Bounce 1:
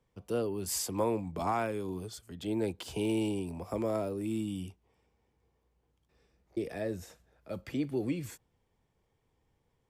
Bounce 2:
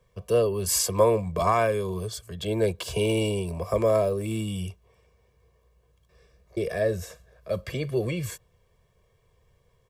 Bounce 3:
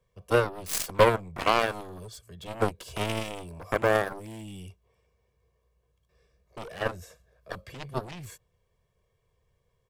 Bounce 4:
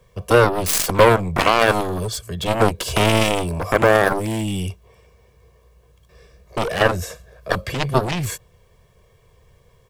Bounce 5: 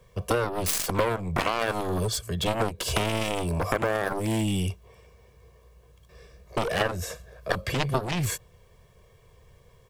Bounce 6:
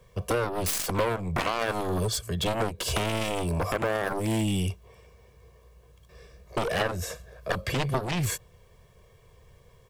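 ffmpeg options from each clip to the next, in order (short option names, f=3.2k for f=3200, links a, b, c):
-af "aecho=1:1:1.8:0.91,volume=7dB"
-af "aeval=exprs='0.422*(cos(1*acos(clip(val(0)/0.422,-1,1)))-cos(1*PI/2))+0.0299*(cos(5*acos(clip(val(0)/0.422,-1,1)))-cos(5*PI/2))+0.0299*(cos(6*acos(clip(val(0)/0.422,-1,1)))-cos(6*PI/2))+0.106*(cos(7*acos(clip(val(0)/0.422,-1,1)))-cos(7*PI/2))+0.0106*(cos(8*acos(clip(val(0)/0.422,-1,1)))-cos(8*PI/2))':c=same"
-af "alimiter=level_in=19dB:limit=-1dB:release=50:level=0:latency=1,volume=-1dB"
-af "acompressor=threshold=-20dB:ratio=6,volume=-1.5dB"
-af "asoftclip=type=tanh:threshold=-14dB"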